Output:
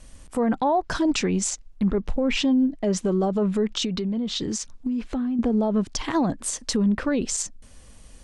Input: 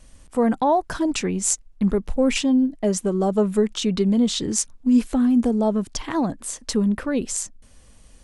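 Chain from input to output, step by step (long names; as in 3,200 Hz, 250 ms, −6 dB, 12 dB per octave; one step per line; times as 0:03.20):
treble cut that deepens with the level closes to 2,900 Hz, closed at −15.5 dBFS
dynamic equaliser 5,300 Hz, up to +4 dB, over −44 dBFS, Q 0.79
brickwall limiter −17.5 dBFS, peak gain reduction 10 dB
0:03.84–0:05.39: downward compressor 3 to 1, threshold −28 dBFS, peak gain reduction 6.5 dB
level +2.5 dB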